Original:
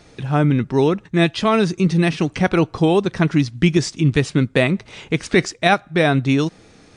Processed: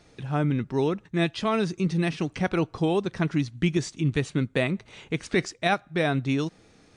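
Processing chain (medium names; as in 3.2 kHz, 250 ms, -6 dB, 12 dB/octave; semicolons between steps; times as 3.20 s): 3.36–5.24 s: band-stop 5.1 kHz, Q 8.2; trim -8.5 dB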